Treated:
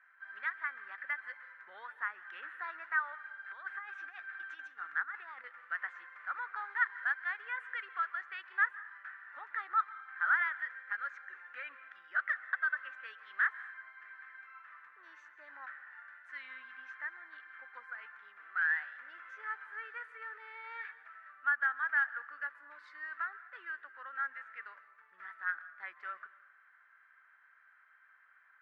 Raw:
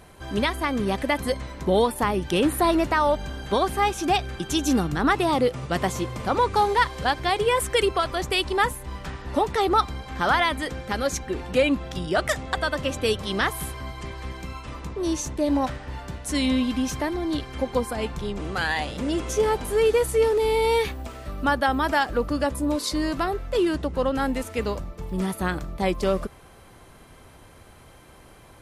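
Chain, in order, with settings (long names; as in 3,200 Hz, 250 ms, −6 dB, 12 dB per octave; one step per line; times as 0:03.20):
0:03.44–0:05.44: compressor whose output falls as the input rises −24 dBFS, ratio −0.5
flat-topped band-pass 1,600 Hz, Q 3.2
convolution reverb RT60 0.80 s, pre-delay 123 ms, DRR 16.5 dB
level −2 dB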